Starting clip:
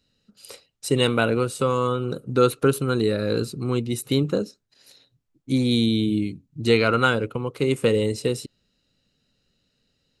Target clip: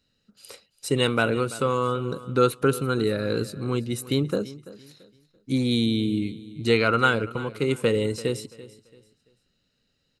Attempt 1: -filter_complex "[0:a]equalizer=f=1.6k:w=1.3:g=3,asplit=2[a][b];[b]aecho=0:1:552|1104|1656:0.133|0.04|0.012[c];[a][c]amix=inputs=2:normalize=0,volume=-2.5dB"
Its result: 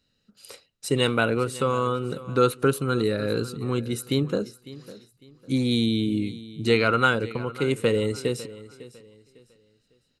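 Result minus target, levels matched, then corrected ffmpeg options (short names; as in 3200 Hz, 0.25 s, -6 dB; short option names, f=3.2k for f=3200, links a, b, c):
echo 0.215 s late
-filter_complex "[0:a]equalizer=f=1.6k:w=1.3:g=3,asplit=2[a][b];[b]aecho=0:1:337|674|1011:0.133|0.04|0.012[c];[a][c]amix=inputs=2:normalize=0,volume=-2.5dB"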